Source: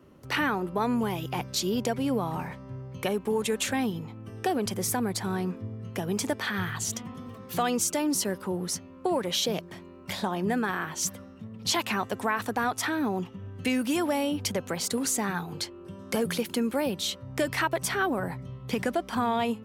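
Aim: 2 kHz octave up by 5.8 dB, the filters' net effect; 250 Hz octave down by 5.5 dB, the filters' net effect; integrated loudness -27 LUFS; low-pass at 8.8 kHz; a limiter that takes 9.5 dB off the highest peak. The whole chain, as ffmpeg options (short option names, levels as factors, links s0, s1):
-af "lowpass=8800,equalizer=f=250:t=o:g=-7,equalizer=f=2000:t=o:g=7.5,volume=1.58,alimiter=limit=0.168:level=0:latency=1"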